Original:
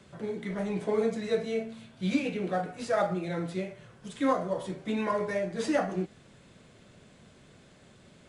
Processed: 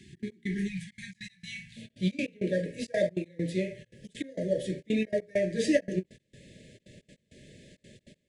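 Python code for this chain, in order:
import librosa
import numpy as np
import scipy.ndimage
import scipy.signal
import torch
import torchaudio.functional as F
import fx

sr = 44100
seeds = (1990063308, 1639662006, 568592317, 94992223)

y = fx.brickwall_bandstop(x, sr, low_hz=fx.steps((0.0, 410.0), (0.67, 190.0), (1.76, 650.0)), high_hz=1600.0)
y = fx.step_gate(y, sr, bpm=199, pattern='xx.x..xxxxxx.', floor_db=-24.0, edge_ms=4.5)
y = fx.end_taper(y, sr, db_per_s=600.0)
y = y * 10.0 ** (3.5 / 20.0)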